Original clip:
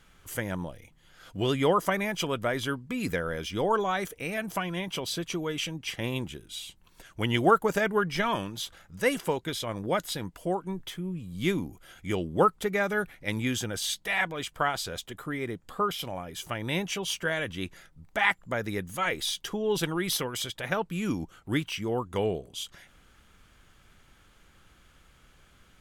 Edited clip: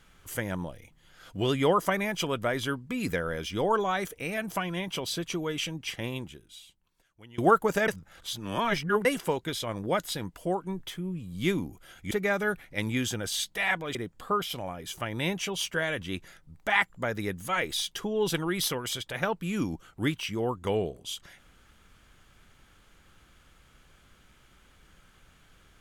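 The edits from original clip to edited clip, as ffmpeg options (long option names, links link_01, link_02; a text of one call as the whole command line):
ffmpeg -i in.wav -filter_complex "[0:a]asplit=6[link_01][link_02][link_03][link_04][link_05][link_06];[link_01]atrim=end=7.38,asetpts=PTS-STARTPTS,afade=type=out:start_time=5.84:duration=1.54:curve=qua:silence=0.0668344[link_07];[link_02]atrim=start=7.38:end=7.882,asetpts=PTS-STARTPTS,afade=type=in:duration=0.004:curve=hsin:silence=0.0668344[link_08];[link_03]atrim=start=7.878:end=9.052,asetpts=PTS-STARTPTS,areverse[link_09];[link_04]atrim=start=9.048:end=12.112[link_10];[link_05]atrim=start=12.608:end=14.452[link_11];[link_06]atrim=start=15.438[link_12];[link_07][link_08]concat=n=2:v=0:a=1[link_13];[link_13][link_09]acrossfade=duration=0.004:curve1=hsin:curve2=hsin[link_14];[link_14][link_10]acrossfade=duration=0.004:curve1=hsin:curve2=hsin[link_15];[link_15][link_11]acrossfade=duration=0.004:curve1=hsin:curve2=hsin[link_16];[link_16][link_12]acrossfade=duration=0.004:curve1=hsin:curve2=hsin" out.wav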